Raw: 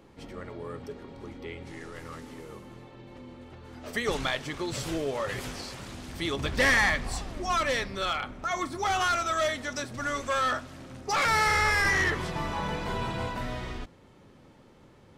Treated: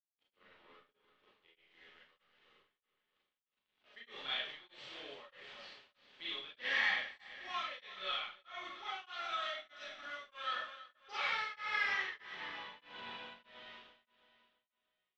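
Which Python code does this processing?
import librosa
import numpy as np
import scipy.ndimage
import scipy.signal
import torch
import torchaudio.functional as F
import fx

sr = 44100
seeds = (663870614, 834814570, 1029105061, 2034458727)

p1 = fx.highpass(x, sr, hz=1100.0, slope=6)
p2 = np.sign(p1) * np.maximum(np.abs(p1) - 10.0 ** (-48.0 / 20.0), 0.0)
p3 = fx.ladder_lowpass(p2, sr, hz=3800.0, resonance_pct=50)
p4 = p3 + fx.echo_feedback(p3, sr, ms=331, feedback_pct=45, wet_db=-12.5, dry=0)
p5 = fx.rev_schroeder(p4, sr, rt60_s=0.5, comb_ms=30, drr_db=-8.0)
p6 = p5 * np.abs(np.cos(np.pi * 1.6 * np.arange(len(p5)) / sr))
y = F.gain(torch.from_numpy(p6), -8.0).numpy()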